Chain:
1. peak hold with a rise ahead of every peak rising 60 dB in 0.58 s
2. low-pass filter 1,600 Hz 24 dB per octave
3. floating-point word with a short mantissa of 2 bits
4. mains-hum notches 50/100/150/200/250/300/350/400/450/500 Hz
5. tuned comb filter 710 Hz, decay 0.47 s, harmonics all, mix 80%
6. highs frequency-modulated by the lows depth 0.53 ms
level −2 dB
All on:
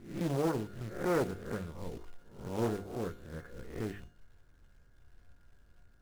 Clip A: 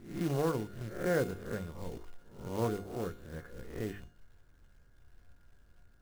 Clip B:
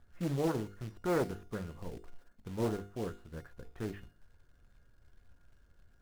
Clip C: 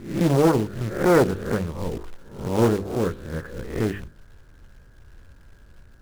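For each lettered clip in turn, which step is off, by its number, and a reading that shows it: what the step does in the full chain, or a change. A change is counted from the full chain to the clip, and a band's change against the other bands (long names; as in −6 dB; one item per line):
6, 250 Hz band −1.5 dB
1, change in momentary loudness spread +1 LU
5, change in integrated loudness +13.5 LU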